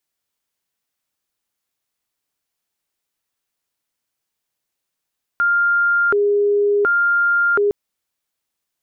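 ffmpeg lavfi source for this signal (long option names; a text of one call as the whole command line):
ffmpeg -f lavfi -i "aevalsrc='0.224*sin(2*PI*(904.5*t+495.5/0.69*(0.5-abs(mod(0.69*t,1)-0.5))))':duration=2.31:sample_rate=44100" out.wav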